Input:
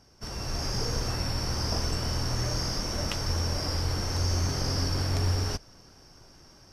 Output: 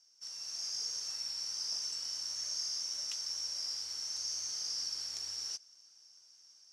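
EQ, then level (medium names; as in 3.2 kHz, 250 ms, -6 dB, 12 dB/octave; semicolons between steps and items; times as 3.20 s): band-pass filter 6.3 kHz, Q 2.3; 0.0 dB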